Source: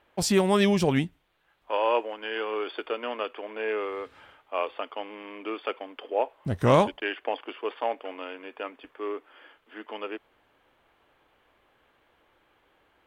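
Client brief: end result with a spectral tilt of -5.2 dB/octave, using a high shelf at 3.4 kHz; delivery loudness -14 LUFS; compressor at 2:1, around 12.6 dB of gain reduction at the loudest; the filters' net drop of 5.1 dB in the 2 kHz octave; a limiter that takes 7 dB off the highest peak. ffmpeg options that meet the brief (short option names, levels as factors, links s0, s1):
-af "equalizer=f=2000:t=o:g=-5.5,highshelf=f=3400:g=-3.5,acompressor=threshold=0.0112:ratio=2,volume=22.4,alimiter=limit=0.841:level=0:latency=1"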